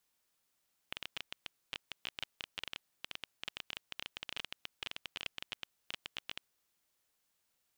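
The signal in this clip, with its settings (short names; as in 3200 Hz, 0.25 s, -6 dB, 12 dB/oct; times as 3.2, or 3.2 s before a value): random clicks 15/s -22 dBFS 5.69 s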